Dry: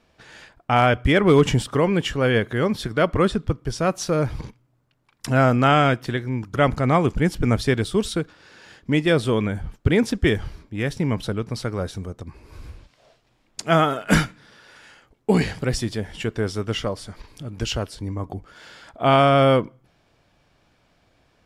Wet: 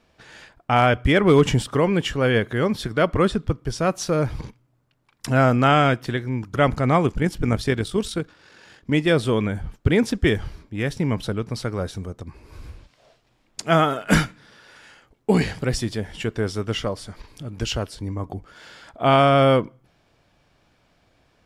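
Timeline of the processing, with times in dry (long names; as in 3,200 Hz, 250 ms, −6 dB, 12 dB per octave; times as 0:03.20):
0:07.07–0:08.92: amplitude modulation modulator 46 Hz, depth 25%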